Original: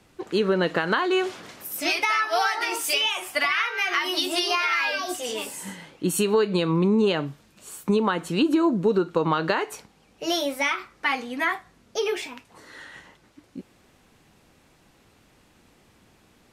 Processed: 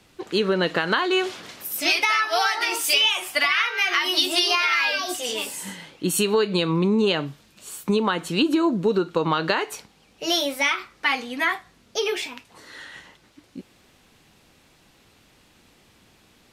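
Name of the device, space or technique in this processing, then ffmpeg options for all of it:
presence and air boost: -af "equalizer=f=3.7k:t=o:w=1.6:g=5.5,highshelf=f=12k:g=6"

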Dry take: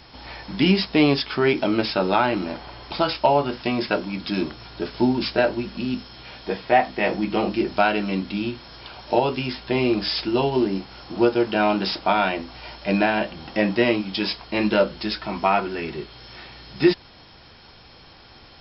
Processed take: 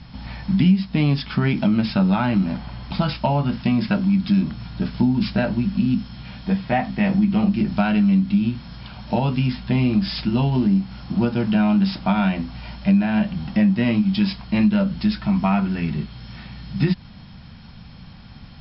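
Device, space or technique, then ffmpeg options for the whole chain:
jukebox: -af "lowpass=5k,lowshelf=f=270:t=q:w=3:g=10.5,acompressor=threshold=-14dB:ratio=4,volume=-1dB"

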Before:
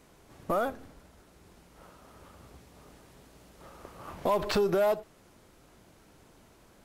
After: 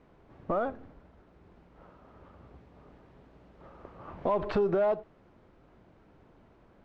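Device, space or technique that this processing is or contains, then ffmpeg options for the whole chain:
phone in a pocket: -af "lowpass=3.3k,highshelf=f=2.2k:g=-11"

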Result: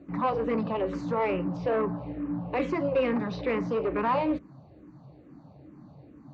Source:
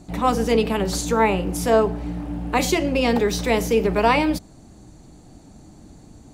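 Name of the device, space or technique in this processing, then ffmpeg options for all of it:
barber-pole phaser into a guitar amplifier: -filter_complex "[0:a]asplit=2[a][b];[b]afreqshift=-2.3[c];[a][c]amix=inputs=2:normalize=1,asoftclip=type=tanh:threshold=-21dB,highpass=88,equalizer=f=140:t=q:w=4:g=10,equalizer=f=290:t=q:w=4:g=6,equalizer=f=550:t=q:w=4:g=8,equalizer=f=1.1k:t=q:w=4:g=8,equalizer=f=3.3k:t=q:w=4:g=-8,lowpass=f=3.5k:w=0.5412,lowpass=f=3.5k:w=1.3066,volume=-4.5dB"

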